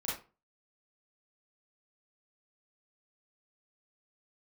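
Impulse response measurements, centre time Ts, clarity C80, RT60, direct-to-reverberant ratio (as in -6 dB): 46 ms, 10.5 dB, 0.35 s, -8.0 dB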